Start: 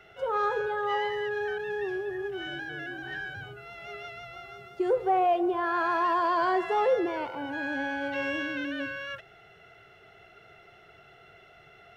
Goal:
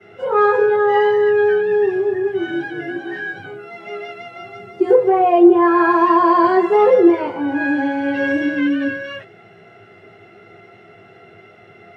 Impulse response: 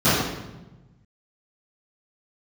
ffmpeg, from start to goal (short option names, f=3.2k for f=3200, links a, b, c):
-filter_complex "[0:a]asettb=1/sr,asplit=3[a][b][c];[a]atrim=end=2.944[d];[b]atrim=start=2.94:end=4.4,asetpts=PTS-STARTPTS,afade=t=in:d=0.004:c=qsin,afade=t=out:st=1.456:d=0.004:c=qsin,highpass=200[e];[c]atrim=start=4.396[f];[d][e]acrossfade=d=0.004:c1=hsin:c2=qsin[g];[g][f]acrossfade=d=0.004:c1=qsin:c2=hsin[h];[1:a]atrim=start_sample=2205,atrim=end_sample=3528,asetrate=70560,aresample=44100[i];[h][i]afir=irnorm=-1:irlink=0,volume=-8.5dB"